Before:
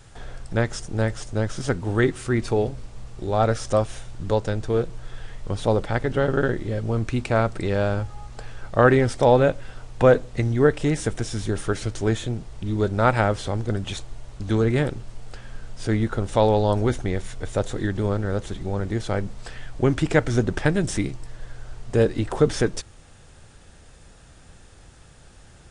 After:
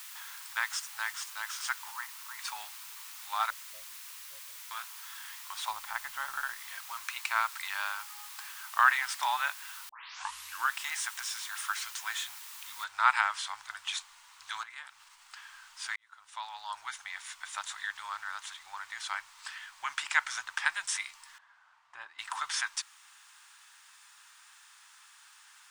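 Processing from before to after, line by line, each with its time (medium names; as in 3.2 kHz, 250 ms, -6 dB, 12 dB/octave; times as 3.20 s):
1.91–2.39 s: ladder band-pass 1 kHz, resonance 70%
3.50–4.71 s: steep low-pass 600 Hz 96 dB/octave
5.71–6.58 s: tilt shelf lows +8.5 dB, about 710 Hz
9.89 s: tape start 0.86 s
12.84 s: noise floor step -46 dB -68 dB
14.63–15.37 s: compression 3:1, threshold -32 dBFS
15.96–17.43 s: fade in
21.38–22.19 s: band-pass filter 310 Hz, Q 0.58
whole clip: elliptic high-pass 970 Hz, stop band 50 dB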